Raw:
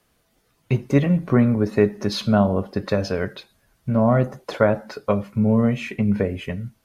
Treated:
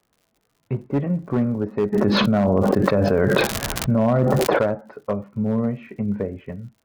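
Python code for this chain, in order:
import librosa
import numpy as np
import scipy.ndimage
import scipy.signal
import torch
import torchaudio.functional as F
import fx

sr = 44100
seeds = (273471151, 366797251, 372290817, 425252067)

y = scipy.signal.sosfilt(scipy.signal.butter(2, 1300.0, 'lowpass', fs=sr, output='sos'), x)
y = fx.low_shelf(y, sr, hz=72.0, db=-7.5)
y = fx.clip_asym(y, sr, top_db=-12.5, bottom_db=-10.5)
y = fx.dmg_crackle(y, sr, seeds[0], per_s=110.0, level_db=-44.0)
y = fx.env_flatten(y, sr, amount_pct=100, at=(1.92, 4.62), fade=0.02)
y = F.gain(torch.from_numpy(y), -3.0).numpy()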